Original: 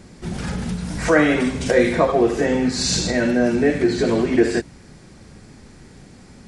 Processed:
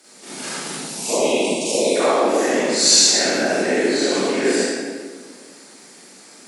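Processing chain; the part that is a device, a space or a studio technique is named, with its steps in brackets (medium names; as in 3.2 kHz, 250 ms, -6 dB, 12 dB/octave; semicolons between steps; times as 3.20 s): RIAA curve recording; 0.78–1.96 s: elliptic band-stop 950–2500 Hz, stop band 40 dB; whispering ghost (whisper effect; high-pass 220 Hz 24 dB/octave; reverberation RT60 1.6 s, pre-delay 30 ms, DRR -9.5 dB); trim -7.5 dB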